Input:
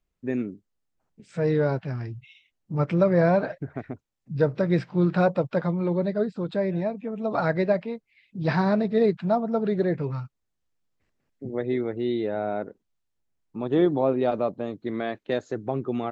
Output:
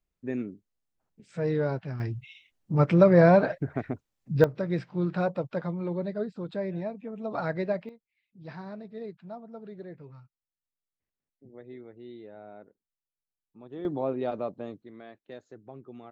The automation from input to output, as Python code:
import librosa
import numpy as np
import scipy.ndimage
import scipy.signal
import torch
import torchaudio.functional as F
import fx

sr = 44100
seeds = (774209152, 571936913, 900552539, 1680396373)

y = fx.gain(x, sr, db=fx.steps((0.0, -4.5), (2.0, 2.5), (4.44, -6.5), (7.89, -18.5), (13.85, -7.0), (14.82, -17.5)))